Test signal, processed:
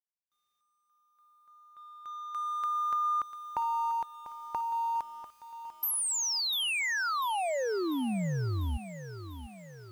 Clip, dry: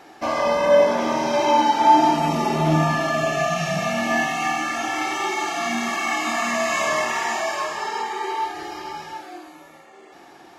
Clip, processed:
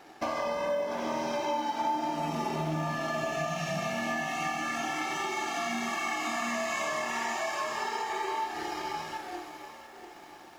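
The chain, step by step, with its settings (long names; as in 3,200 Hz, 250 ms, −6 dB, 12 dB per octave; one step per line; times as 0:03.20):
mu-law and A-law mismatch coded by A
downward compressor 5 to 1, threshold −30 dBFS
feedback echo at a low word length 695 ms, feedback 55%, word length 9 bits, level −12 dB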